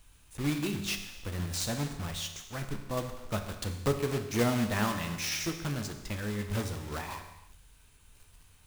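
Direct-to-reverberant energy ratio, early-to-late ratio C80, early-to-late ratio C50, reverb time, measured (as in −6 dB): 5.5 dB, 9.5 dB, 8.0 dB, non-exponential decay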